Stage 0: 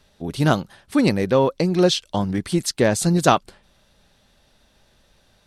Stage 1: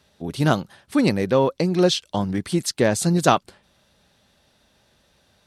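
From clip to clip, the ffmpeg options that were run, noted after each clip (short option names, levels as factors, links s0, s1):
-af "highpass=67,volume=0.891"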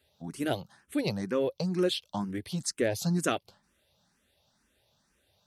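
-filter_complex "[0:a]highshelf=f=9700:g=8.5,asplit=2[s0][s1];[s1]afreqshift=2.1[s2];[s0][s2]amix=inputs=2:normalize=1,volume=0.422"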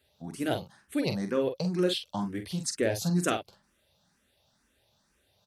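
-filter_complex "[0:a]asplit=2[s0][s1];[s1]adelay=45,volume=0.422[s2];[s0][s2]amix=inputs=2:normalize=0"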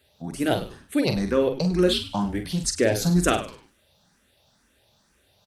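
-filter_complex "[0:a]asplit=4[s0][s1][s2][s3];[s1]adelay=100,afreqshift=-130,volume=0.2[s4];[s2]adelay=200,afreqshift=-260,volume=0.0638[s5];[s3]adelay=300,afreqshift=-390,volume=0.0204[s6];[s0][s4][s5][s6]amix=inputs=4:normalize=0,volume=2.11"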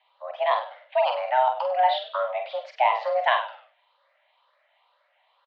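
-filter_complex "[0:a]asplit=2[s0][s1];[s1]adelay=48,volume=0.355[s2];[s0][s2]amix=inputs=2:normalize=0,highpass=f=190:t=q:w=0.5412,highpass=f=190:t=q:w=1.307,lowpass=f=3000:t=q:w=0.5176,lowpass=f=3000:t=q:w=0.7071,lowpass=f=3000:t=q:w=1.932,afreqshift=370"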